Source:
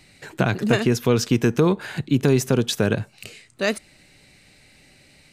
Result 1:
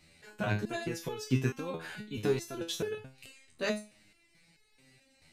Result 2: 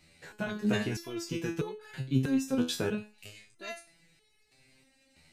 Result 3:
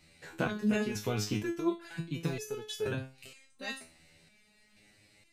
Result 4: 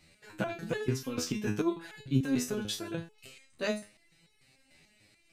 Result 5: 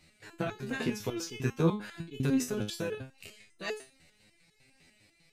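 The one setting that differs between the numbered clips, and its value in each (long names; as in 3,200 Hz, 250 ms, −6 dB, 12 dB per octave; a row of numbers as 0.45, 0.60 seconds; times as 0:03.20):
step-sequenced resonator, speed: 4.6, 3.1, 2.1, 6.8, 10 Hertz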